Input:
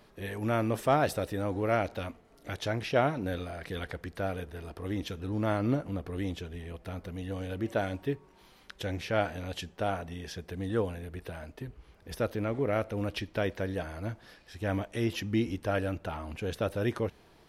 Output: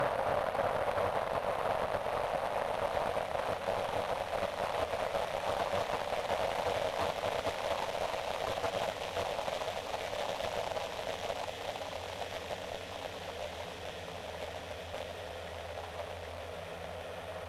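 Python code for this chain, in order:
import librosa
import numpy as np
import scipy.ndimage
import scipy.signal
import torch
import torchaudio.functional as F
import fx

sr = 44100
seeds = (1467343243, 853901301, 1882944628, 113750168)

y = fx.paulstretch(x, sr, seeds[0], factor=23.0, window_s=1.0, from_s=5.94)
y = fx.cheby_harmonics(y, sr, harmonics=(7,), levels_db=(-8,), full_scale_db=-22.0)
y = fx.low_shelf_res(y, sr, hz=440.0, db=-9.0, q=3.0)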